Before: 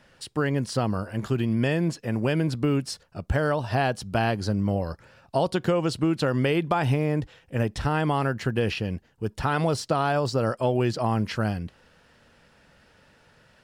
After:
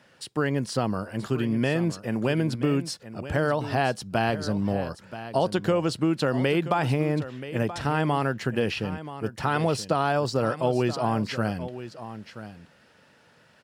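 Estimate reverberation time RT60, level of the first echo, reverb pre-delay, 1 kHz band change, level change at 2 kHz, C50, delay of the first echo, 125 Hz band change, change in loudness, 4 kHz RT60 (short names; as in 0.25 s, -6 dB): none, -13.0 dB, none, 0.0 dB, 0.0 dB, none, 0.979 s, -2.0 dB, -0.5 dB, none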